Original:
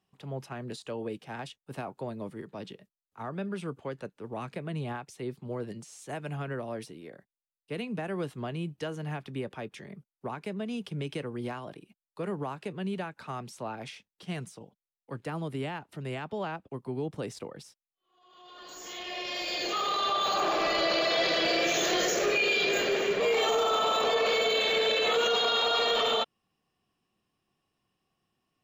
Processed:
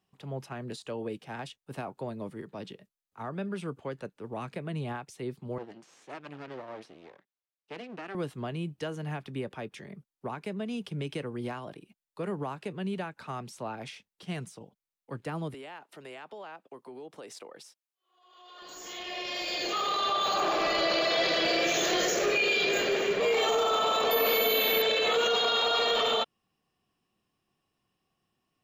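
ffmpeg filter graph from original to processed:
-filter_complex "[0:a]asettb=1/sr,asplit=3[s0][s1][s2];[s0]atrim=end=5.584[s3];[s1]atrim=start=5.58:end=8.15,asetpts=PTS-STARTPTS,afade=t=in:d=0.004:c=qsin,afade=t=out:st=2.566:d=0.004:c=qsin,aeval=exprs='max(val(0),0)':c=same,highpass=240,lowpass=5000[s4];[s2]atrim=start=8.146[s5];[s3][s4]acrossfade=d=0.004:c1=hsin:c2=qsin[s6];[s6][s5]acrossfade=d=0.004:c1=qsin:c2=hsin,asettb=1/sr,asplit=3[s7][s8][s9];[s7]atrim=end=15.544[s10];[s8]atrim=start=15.54:end=18.62,asetpts=PTS-STARTPTS,afade=t=in:d=0.004:c=qsin,afade=t=out:st=3.076:d=0.004:c=qsin,highpass=410,acompressor=threshold=0.00891:ratio=4:attack=3.2:release=140:knee=1:detection=peak[s11];[s9]atrim=start=18.616[s12];[s10][s11]acrossfade=d=0.004:c1=hsin:c2=qsin[s13];[s13][s12]acrossfade=d=0.004:c1=qsin:c2=hsin,asettb=1/sr,asplit=3[s14][s15][s16];[s14]atrim=end=24.114[s17];[s15]atrim=start=24.11:end=24.82,asetpts=PTS-STARTPTS,afade=t=in:d=0.004:c=qsin,afade=t=out:st=0.706:d=0.004:c=qsin,equalizer=f=260:t=o:w=0.31:g=8,aeval=exprs='val(0)+0.0316*sin(2*PI*14000*n/s)':c=same[s18];[s16]atrim=start=24.816[s19];[s17][s18]acrossfade=d=0.004:c1=hsin:c2=qsin[s20];[s20][s19]acrossfade=d=0.004:c1=qsin:c2=hsin"

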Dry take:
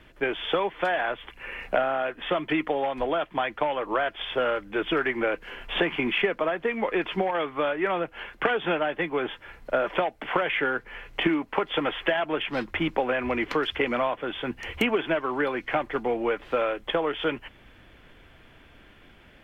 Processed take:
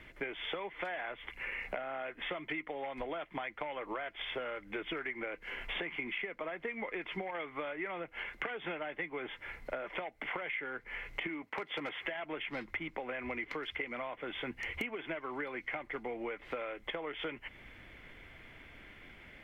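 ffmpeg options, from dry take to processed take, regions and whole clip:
-filter_complex "[0:a]asettb=1/sr,asplit=3[s0][s1][s2];[s0]atrim=end=11.424[s3];[s1]atrim=start=11.42:end=12.05,asetpts=PTS-STARTPTS,afade=t=in:d=0.004:c=qsin,afade=t=out:st=0.626:d=0.004:c=qsin,highpass=f=70:w=0.5412,highpass=f=70:w=1.3066,agate=range=0.447:threshold=0.00126:ratio=16:release=100:detection=peak,asoftclip=type=hard:threshold=0.106[s4];[s2]atrim=start=12.046[s5];[s3][s4]acrossfade=d=0.004:c1=hsin:c2=qsin[s6];[s6][s5]acrossfade=d=0.004:c1=qsin:c2=hsin,equalizer=f=2100:t=o:w=0.23:g=13,acompressor=threshold=0.02:ratio=6,volume=0.708"

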